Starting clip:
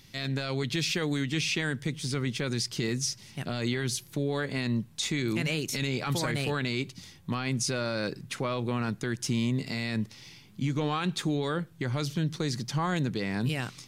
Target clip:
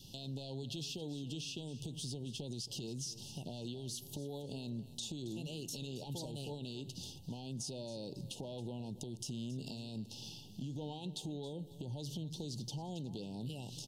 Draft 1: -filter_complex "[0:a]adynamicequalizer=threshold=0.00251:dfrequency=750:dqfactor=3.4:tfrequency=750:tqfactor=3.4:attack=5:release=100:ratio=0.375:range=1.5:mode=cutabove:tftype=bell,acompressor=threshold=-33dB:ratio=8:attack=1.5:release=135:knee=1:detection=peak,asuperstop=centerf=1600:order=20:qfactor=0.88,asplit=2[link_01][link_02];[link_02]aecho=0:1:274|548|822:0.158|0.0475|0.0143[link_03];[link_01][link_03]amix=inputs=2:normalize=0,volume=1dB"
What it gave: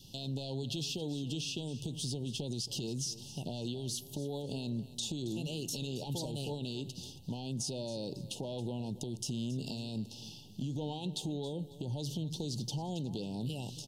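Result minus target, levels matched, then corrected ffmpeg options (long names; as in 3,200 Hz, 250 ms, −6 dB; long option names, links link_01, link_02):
downward compressor: peak gain reduction −5 dB
-filter_complex "[0:a]adynamicequalizer=threshold=0.00251:dfrequency=750:dqfactor=3.4:tfrequency=750:tqfactor=3.4:attack=5:release=100:ratio=0.375:range=1.5:mode=cutabove:tftype=bell,acompressor=threshold=-39dB:ratio=8:attack=1.5:release=135:knee=1:detection=peak,asuperstop=centerf=1600:order=20:qfactor=0.88,asplit=2[link_01][link_02];[link_02]aecho=0:1:274|548|822:0.158|0.0475|0.0143[link_03];[link_01][link_03]amix=inputs=2:normalize=0,volume=1dB"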